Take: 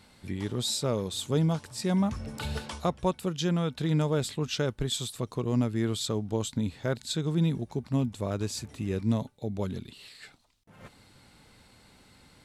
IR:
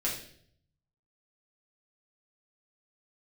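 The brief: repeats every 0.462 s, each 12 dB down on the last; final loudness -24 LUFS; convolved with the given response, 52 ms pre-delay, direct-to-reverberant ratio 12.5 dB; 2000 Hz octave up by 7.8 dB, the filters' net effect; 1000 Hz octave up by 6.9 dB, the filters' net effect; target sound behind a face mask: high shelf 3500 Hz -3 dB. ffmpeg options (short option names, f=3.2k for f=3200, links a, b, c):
-filter_complex "[0:a]equalizer=f=1k:t=o:g=6.5,equalizer=f=2k:t=o:g=9,aecho=1:1:462|924|1386:0.251|0.0628|0.0157,asplit=2[a][b];[1:a]atrim=start_sample=2205,adelay=52[c];[b][c]afir=irnorm=-1:irlink=0,volume=-18dB[d];[a][d]amix=inputs=2:normalize=0,highshelf=f=3.5k:g=-3,volume=4.5dB"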